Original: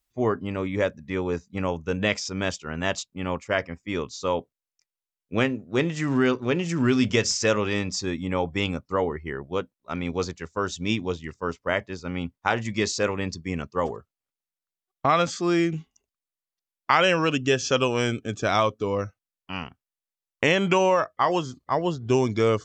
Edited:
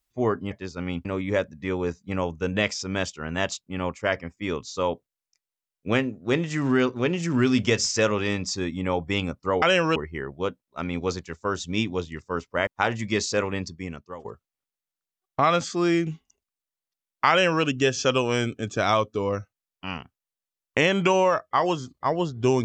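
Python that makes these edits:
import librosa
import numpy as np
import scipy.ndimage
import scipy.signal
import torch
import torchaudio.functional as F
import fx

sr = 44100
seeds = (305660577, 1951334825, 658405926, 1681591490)

y = fx.edit(x, sr, fx.move(start_s=11.79, length_s=0.54, to_s=0.51),
    fx.fade_out_to(start_s=13.19, length_s=0.72, floor_db=-20.5),
    fx.duplicate(start_s=16.96, length_s=0.34, to_s=9.08), tone=tone)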